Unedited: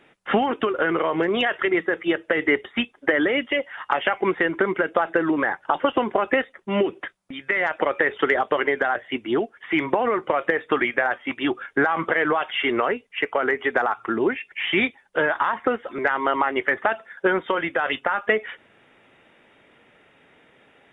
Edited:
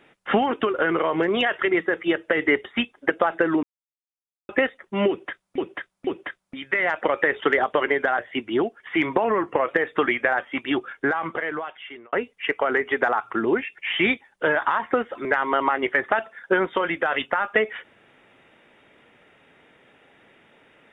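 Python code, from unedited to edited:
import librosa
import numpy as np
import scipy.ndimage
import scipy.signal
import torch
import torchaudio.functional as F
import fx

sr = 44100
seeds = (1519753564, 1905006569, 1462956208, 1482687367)

y = fx.edit(x, sr, fx.cut(start_s=3.1, length_s=1.75),
    fx.silence(start_s=5.38, length_s=0.86),
    fx.repeat(start_s=6.84, length_s=0.49, count=3),
    fx.speed_span(start_s=10.01, length_s=0.41, speed=0.92),
    fx.fade_out_span(start_s=11.4, length_s=1.46), tone=tone)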